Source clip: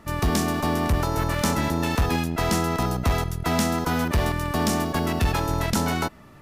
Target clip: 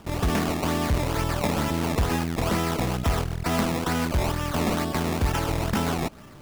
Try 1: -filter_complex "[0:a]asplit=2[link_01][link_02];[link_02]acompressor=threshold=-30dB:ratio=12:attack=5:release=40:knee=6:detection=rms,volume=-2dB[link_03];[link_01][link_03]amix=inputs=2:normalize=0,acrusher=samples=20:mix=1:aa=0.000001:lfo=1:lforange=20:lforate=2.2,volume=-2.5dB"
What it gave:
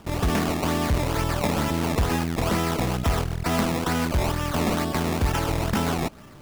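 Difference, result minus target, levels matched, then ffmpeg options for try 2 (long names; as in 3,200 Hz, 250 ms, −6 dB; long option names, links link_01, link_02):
downward compressor: peak gain reduction −6.5 dB
-filter_complex "[0:a]asplit=2[link_01][link_02];[link_02]acompressor=threshold=-37dB:ratio=12:attack=5:release=40:knee=6:detection=rms,volume=-2dB[link_03];[link_01][link_03]amix=inputs=2:normalize=0,acrusher=samples=20:mix=1:aa=0.000001:lfo=1:lforange=20:lforate=2.2,volume=-2.5dB"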